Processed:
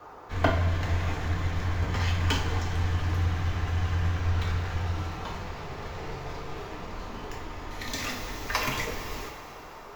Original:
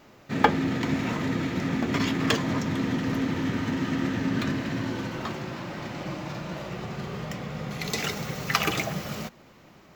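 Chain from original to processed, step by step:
noise in a band 510–1,500 Hz −44 dBFS
coupled-rooms reverb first 0.44 s, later 4.4 s, from −16 dB, DRR −1 dB
frequency shifter −180 Hz
level −6 dB

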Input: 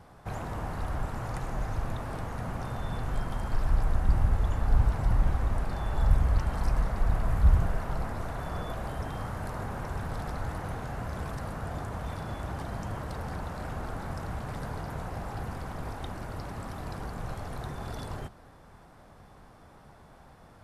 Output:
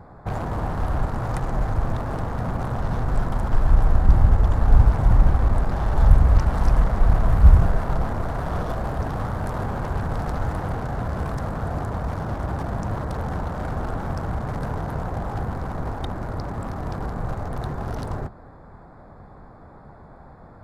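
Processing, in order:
adaptive Wiener filter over 15 samples
level +9 dB

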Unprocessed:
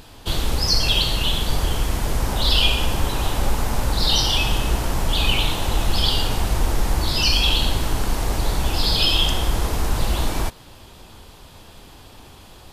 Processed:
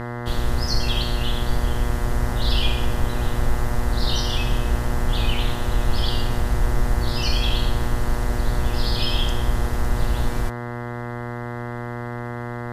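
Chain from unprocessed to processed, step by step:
low-shelf EQ 160 Hz +8.5 dB
hum with harmonics 120 Hz, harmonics 17, −22 dBFS −4 dB per octave
level −8 dB

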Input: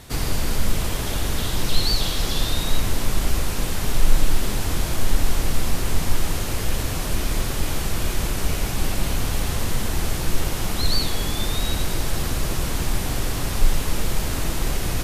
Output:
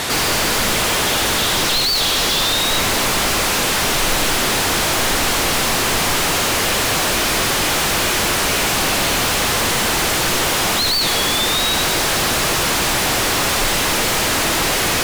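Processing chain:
mid-hump overdrive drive 43 dB, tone 5,700 Hz, clips at −2 dBFS
level −7 dB

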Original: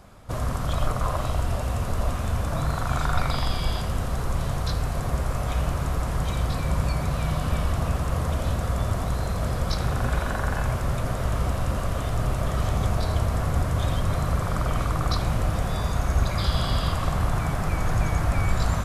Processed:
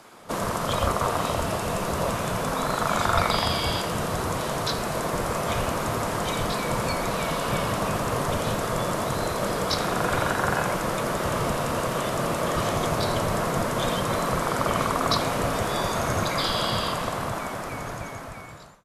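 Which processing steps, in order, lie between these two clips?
fade-out on the ending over 2.74 s
gate on every frequency bin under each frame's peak −10 dB weak
frequency shifter −46 Hz
level +6.5 dB

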